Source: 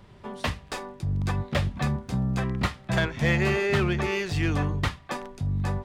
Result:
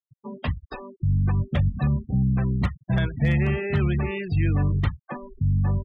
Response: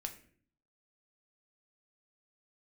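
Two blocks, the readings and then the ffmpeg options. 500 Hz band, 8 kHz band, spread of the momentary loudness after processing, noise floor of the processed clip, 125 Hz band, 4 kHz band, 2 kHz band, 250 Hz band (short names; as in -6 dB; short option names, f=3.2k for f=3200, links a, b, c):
-3.0 dB, under -20 dB, 10 LU, under -85 dBFS, +5.0 dB, -7.5 dB, -4.5 dB, +2.5 dB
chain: -filter_complex "[0:a]asplit=2[a][b];[b]asoftclip=type=tanh:threshold=-24dB,volume=-9dB[c];[a][c]amix=inputs=2:normalize=0,afftfilt=real='re*gte(hypot(re,im),0.0562)':imag='im*gte(hypot(re,im),0.0562)':win_size=1024:overlap=0.75,acrossover=split=210|3000[d][e][f];[e]acompressor=threshold=-31dB:ratio=1.5[g];[d][g][f]amix=inputs=3:normalize=0,aeval=exprs='0.188*(abs(mod(val(0)/0.188+3,4)-2)-1)':c=same,bass=f=250:g=7,treble=f=4k:g=-2,volume=-3dB"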